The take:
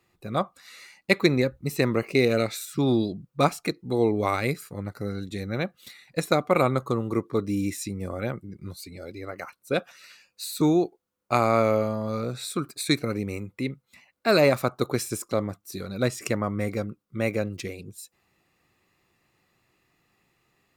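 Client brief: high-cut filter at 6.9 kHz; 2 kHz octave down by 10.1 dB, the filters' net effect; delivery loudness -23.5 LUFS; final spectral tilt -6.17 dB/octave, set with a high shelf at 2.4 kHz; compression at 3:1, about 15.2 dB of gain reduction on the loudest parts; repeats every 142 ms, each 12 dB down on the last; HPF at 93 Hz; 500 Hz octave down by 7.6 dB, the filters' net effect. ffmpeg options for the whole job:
-af "highpass=93,lowpass=6900,equalizer=f=500:t=o:g=-9,equalizer=f=2000:t=o:g=-8,highshelf=f=2400:g=-8,acompressor=threshold=0.00794:ratio=3,aecho=1:1:142|284|426:0.251|0.0628|0.0157,volume=10.6"

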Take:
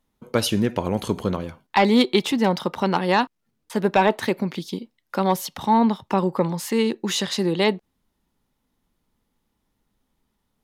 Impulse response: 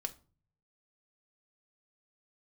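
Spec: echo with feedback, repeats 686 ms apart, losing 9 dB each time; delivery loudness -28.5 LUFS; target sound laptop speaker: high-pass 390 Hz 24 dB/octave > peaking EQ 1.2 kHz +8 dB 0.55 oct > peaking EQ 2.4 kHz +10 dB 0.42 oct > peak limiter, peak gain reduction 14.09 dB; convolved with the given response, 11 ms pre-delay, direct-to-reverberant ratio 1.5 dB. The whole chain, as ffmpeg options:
-filter_complex "[0:a]aecho=1:1:686|1372|2058|2744:0.355|0.124|0.0435|0.0152,asplit=2[s0][s1];[1:a]atrim=start_sample=2205,adelay=11[s2];[s1][s2]afir=irnorm=-1:irlink=0,volume=0.891[s3];[s0][s3]amix=inputs=2:normalize=0,highpass=f=390:w=0.5412,highpass=f=390:w=1.3066,equalizer=f=1200:t=o:w=0.55:g=8,equalizer=f=2400:t=o:w=0.42:g=10,volume=0.708,alimiter=limit=0.126:level=0:latency=1"

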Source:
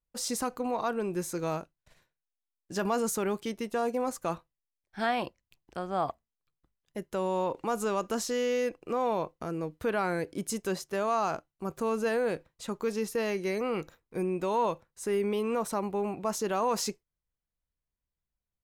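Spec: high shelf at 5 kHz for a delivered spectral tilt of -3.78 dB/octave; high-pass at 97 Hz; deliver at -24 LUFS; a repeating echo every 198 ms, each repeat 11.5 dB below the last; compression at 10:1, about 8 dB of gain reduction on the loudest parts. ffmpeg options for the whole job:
-af "highpass=97,highshelf=f=5000:g=4,acompressor=threshold=0.0251:ratio=10,aecho=1:1:198|396|594:0.266|0.0718|0.0194,volume=4.47"

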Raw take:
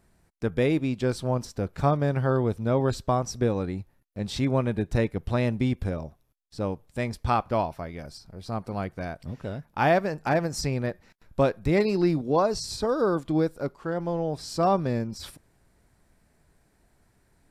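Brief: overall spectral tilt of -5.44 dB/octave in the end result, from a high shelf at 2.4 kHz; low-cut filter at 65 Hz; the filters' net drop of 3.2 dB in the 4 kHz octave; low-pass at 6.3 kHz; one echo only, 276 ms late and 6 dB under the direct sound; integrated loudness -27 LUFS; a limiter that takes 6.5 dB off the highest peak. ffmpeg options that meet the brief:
-af "highpass=65,lowpass=6300,highshelf=f=2400:g=5.5,equalizer=f=4000:t=o:g=-8.5,alimiter=limit=0.168:level=0:latency=1,aecho=1:1:276:0.501,volume=1.06"

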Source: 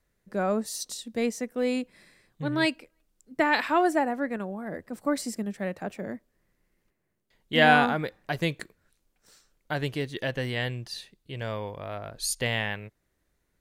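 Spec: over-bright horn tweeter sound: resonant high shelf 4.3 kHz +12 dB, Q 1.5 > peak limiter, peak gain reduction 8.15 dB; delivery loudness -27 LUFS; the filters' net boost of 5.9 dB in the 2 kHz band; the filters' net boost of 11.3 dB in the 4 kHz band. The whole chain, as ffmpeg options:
-af "equalizer=f=2000:t=o:g=8,equalizer=f=4000:t=o:g=8.5,highshelf=f=4300:t=q:w=1.5:g=12,volume=0.75,alimiter=limit=0.251:level=0:latency=1"

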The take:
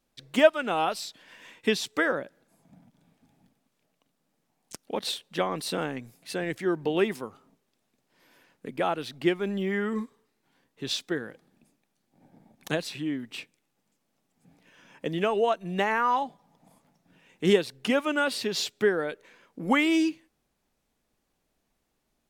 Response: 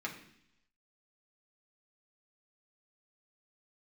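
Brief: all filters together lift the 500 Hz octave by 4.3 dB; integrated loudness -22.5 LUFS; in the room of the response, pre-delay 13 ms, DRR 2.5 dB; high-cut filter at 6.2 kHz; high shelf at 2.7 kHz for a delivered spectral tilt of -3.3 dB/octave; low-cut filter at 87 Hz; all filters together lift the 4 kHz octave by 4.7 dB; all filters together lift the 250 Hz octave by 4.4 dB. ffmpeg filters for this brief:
-filter_complex "[0:a]highpass=87,lowpass=6200,equalizer=f=250:t=o:g=4.5,equalizer=f=500:t=o:g=4,highshelf=f=2700:g=3,equalizer=f=4000:t=o:g=4,asplit=2[s0][s1];[1:a]atrim=start_sample=2205,adelay=13[s2];[s1][s2]afir=irnorm=-1:irlink=0,volume=0.562[s3];[s0][s3]amix=inputs=2:normalize=0"

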